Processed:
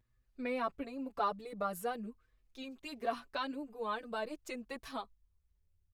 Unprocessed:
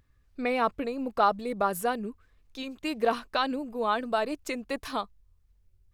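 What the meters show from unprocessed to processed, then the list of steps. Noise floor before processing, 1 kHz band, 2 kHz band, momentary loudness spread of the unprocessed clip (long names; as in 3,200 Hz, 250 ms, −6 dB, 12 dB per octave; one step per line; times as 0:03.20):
−66 dBFS, −10.0 dB, −10.0 dB, 14 LU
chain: barber-pole flanger 5.9 ms +0.44 Hz
level −7 dB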